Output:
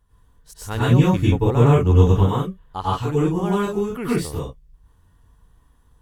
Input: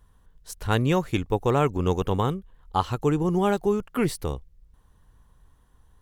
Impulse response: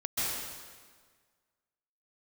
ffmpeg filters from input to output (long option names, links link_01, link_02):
-filter_complex "[0:a]asettb=1/sr,asplit=3[link_01][link_02][link_03];[link_01]atrim=end=0.794[link_04];[link_02]atrim=start=0.79:end=2.15,asetpts=PTS-STARTPTS,afade=type=in:duration=0.004:curve=qsin,afade=type=out:start_time=1.356:duration=0.004:curve=qsin,equalizer=frequency=77:width=0.34:gain=8.5[link_05];[link_03]atrim=start=2.146[link_06];[link_04][link_05]acrossfade=duration=0.004:curve1=hsin:curve2=qsin[link_07];[link_07][link_06]acrossfade=duration=0.004:curve1=qsin:curve2=hsin[link_08];[1:a]atrim=start_sample=2205,afade=type=out:start_time=0.28:duration=0.01,atrim=end_sample=12789,asetrate=61740,aresample=44100[link_09];[link_08][link_09]afir=irnorm=-1:irlink=0,volume=-1dB"